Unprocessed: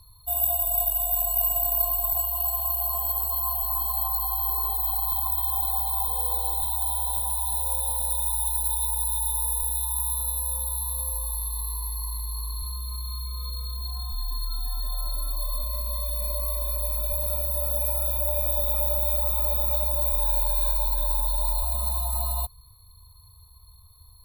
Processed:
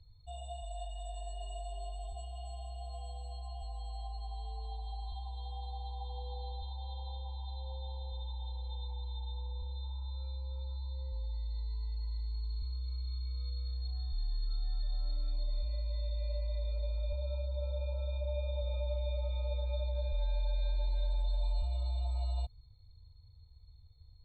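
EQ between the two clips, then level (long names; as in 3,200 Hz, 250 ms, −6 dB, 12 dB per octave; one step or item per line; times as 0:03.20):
linear-phase brick-wall low-pass 8,500 Hz
high-frequency loss of the air 92 metres
phaser with its sweep stopped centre 2,600 Hz, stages 4
−4.0 dB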